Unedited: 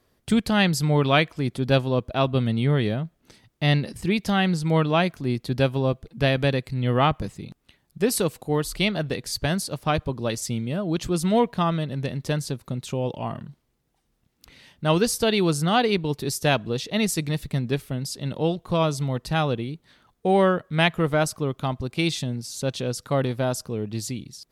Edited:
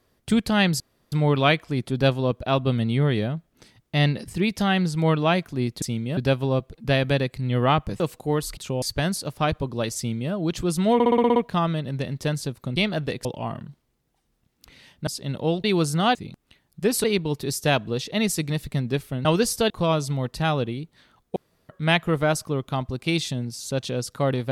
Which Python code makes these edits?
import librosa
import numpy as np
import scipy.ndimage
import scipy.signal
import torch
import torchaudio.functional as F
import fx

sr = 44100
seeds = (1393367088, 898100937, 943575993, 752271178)

y = fx.edit(x, sr, fx.insert_room_tone(at_s=0.8, length_s=0.32),
    fx.move(start_s=7.33, length_s=0.89, to_s=15.83),
    fx.swap(start_s=8.79, length_s=0.49, other_s=12.8, other_length_s=0.25),
    fx.duplicate(start_s=10.43, length_s=0.35, to_s=5.5),
    fx.stutter(start_s=11.4, slice_s=0.06, count=8),
    fx.swap(start_s=14.87, length_s=0.45, other_s=18.04, other_length_s=0.57),
    fx.room_tone_fill(start_s=20.27, length_s=0.33), tone=tone)